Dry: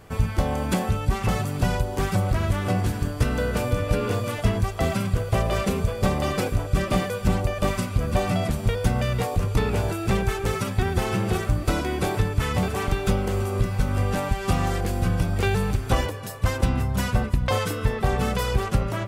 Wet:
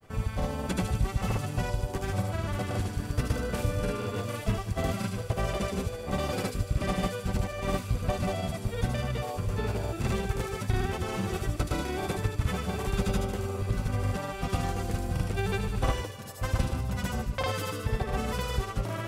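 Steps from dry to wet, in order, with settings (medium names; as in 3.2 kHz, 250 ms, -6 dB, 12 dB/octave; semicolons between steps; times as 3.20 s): granulator, pitch spread up and down by 0 st; feedback echo behind a high-pass 75 ms, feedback 55%, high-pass 3.8 kHz, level -3 dB; trim -5.5 dB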